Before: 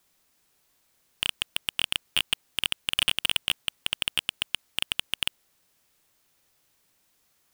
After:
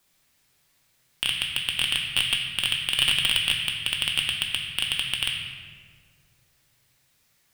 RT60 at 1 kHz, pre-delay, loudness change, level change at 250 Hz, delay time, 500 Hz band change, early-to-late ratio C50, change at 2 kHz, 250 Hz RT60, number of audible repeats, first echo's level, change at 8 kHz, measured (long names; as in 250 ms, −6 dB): 1.8 s, 3 ms, +4.0 dB, +3.5 dB, no echo audible, +0.5 dB, 2.0 dB, +4.5 dB, 2.5 s, no echo audible, no echo audible, +2.5 dB